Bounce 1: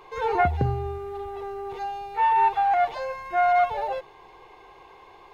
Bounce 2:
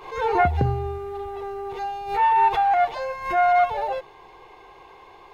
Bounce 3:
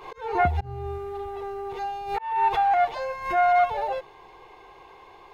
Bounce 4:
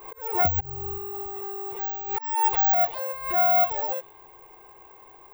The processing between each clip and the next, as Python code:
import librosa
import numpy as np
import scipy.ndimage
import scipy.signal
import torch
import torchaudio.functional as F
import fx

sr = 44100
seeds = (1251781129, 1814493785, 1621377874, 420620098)

y1 = fx.pre_swell(x, sr, db_per_s=97.0)
y1 = y1 * librosa.db_to_amplitude(2.0)
y2 = fx.auto_swell(y1, sr, attack_ms=328.0)
y2 = y2 * librosa.db_to_amplitude(-1.5)
y3 = fx.env_lowpass(y2, sr, base_hz=2300.0, full_db=-18.5)
y3 = (np.kron(scipy.signal.resample_poly(y3, 1, 2), np.eye(2)[0]) * 2)[:len(y3)]
y3 = y3 * librosa.db_to_amplitude(-3.5)